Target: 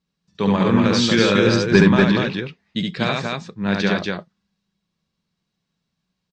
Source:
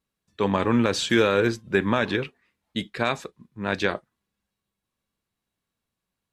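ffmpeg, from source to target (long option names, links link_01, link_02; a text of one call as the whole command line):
ffmpeg -i in.wav -filter_complex "[0:a]equalizer=frequency=170:width=2.8:gain=14,asettb=1/sr,asplit=3[link_01][link_02][link_03];[link_01]atrim=end=1.484[link_04];[link_02]atrim=start=1.48:end=1.88,asetpts=PTS-STARTPTS,afade=type=in:duration=0.004:curve=qsin,afade=type=out:start_time=0.396:duration=0.004:curve=qsin,acontrast=83[link_05];[link_03]atrim=start=1.876[link_06];[link_04][link_05]acrossfade=duration=0.004:curve1=hsin:curve2=qsin[link_07];[link_07][link_06]acrossfade=duration=0.004:curve1=qsin:curve2=hsin,lowpass=frequency=5200:width_type=q:width=2.1,aecho=1:1:69.97|239.1:0.794|0.708" -ar 22050 -c:a libmp3lame -b:a 56k out.mp3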